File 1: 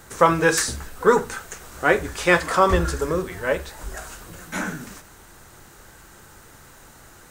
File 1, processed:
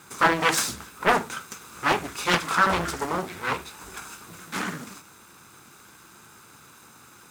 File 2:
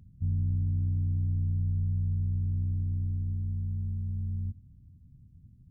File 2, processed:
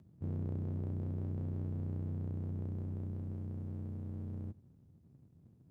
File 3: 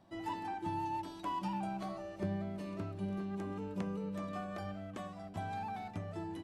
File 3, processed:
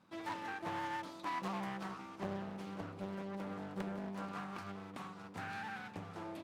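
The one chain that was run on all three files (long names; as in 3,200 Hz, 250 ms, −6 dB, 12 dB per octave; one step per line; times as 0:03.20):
lower of the sound and its delayed copy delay 0.79 ms
high-pass filter 160 Hz 12 dB per octave
highs frequency-modulated by the lows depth 0.81 ms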